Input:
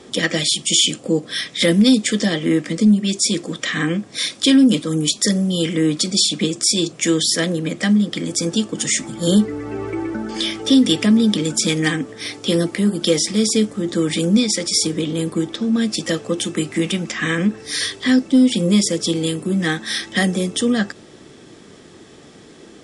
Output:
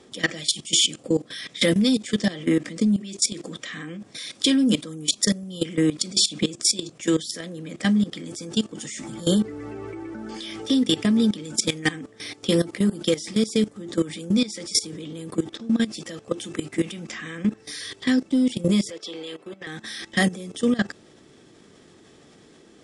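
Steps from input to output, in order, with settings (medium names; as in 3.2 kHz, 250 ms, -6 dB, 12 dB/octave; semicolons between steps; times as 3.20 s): 18.90–19.67 s: three-band isolator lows -23 dB, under 410 Hz, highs -20 dB, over 4.5 kHz; level held to a coarse grid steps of 17 dB; trim -1 dB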